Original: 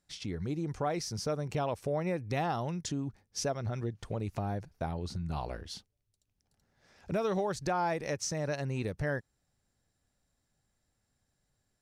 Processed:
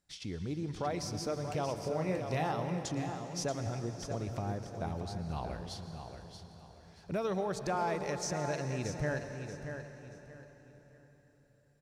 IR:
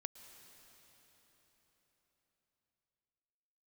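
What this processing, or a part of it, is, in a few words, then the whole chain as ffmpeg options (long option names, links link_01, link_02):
cathedral: -filter_complex "[0:a]asettb=1/sr,asplit=3[link_01][link_02][link_03];[link_01]atrim=end=1.844[link_04];[link_02]atrim=start=1.84:end=2.52,asetpts=PTS-STARTPTS,afade=type=in:duration=0.004:curve=qsin,afade=type=out:start_time=0.676:duration=0.004:curve=qsin,asplit=2[link_05][link_06];[link_06]adelay=32,volume=-5dB[link_07];[link_05][link_07]amix=inputs=2:normalize=0,atrim=end_sample=29988[link_08];[link_03]atrim=start=2.516[link_09];[link_04][link_08]acrossfade=duration=0.004:curve1=hsin:curve2=qsin[link_10];[link_10][link_09]acrossfade=duration=0.004:curve1=qsin:curve2=hsin,aecho=1:1:631|1262|1893:0.376|0.105|0.0295[link_11];[1:a]atrim=start_sample=2205[link_12];[link_11][link_12]afir=irnorm=-1:irlink=0,volume=1.5dB"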